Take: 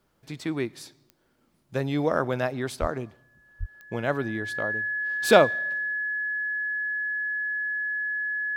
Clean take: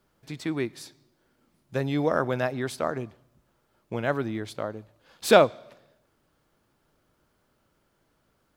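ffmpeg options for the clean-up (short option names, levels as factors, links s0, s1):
-filter_complex "[0:a]adeclick=t=4,bandreject=f=1700:w=30,asplit=3[s0][s1][s2];[s0]afade=t=out:st=2.8:d=0.02[s3];[s1]highpass=f=140:w=0.5412,highpass=f=140:w=1.3066,afade=t=in:st=2.8:d=0.02,afade=t=out:st=2.92:d=0.02[s4];[s2]afade=t=in:st=2.92:d=0.02[s5];[s3][s4][s5]amix=inputs=3:normalize=0,asplit=3[s6][s7][s8];[s6]afade=t=out:st=3.59:d=0.02[s9];[s7]highpass=f=140:w=0.5412,highpass=f=140:w=1.3066,afade=t=in:st=3.59:d=0.02,afade=t=out:st=3.71:d=0.02[s10];[s8]afade=t=in:st=3.71:d=0.02[s11];[s9][s10][s11]amix=inputs=3:normalize=0"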